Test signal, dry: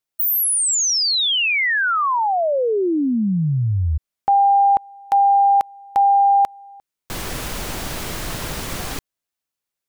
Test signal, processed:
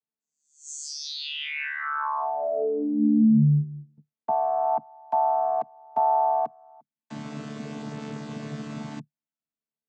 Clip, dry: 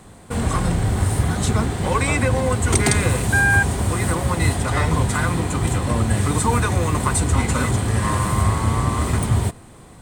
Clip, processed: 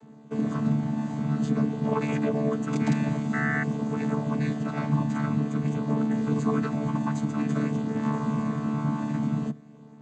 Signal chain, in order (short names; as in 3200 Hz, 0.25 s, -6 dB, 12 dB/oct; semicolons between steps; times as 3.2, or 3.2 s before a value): chord vocoder bare fifth, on D3; bell 260 Hz +4 dB 0.67 oct; gain -6.5 dB